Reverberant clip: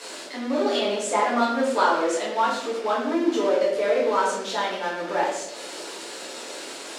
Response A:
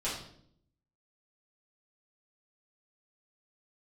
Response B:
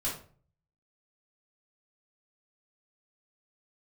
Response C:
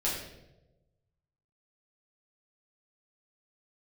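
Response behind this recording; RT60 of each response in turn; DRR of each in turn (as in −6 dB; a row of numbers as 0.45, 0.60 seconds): C; 0.65, 0.45, 1.0 seconds; −9.5, −7.5, −7.5 decibels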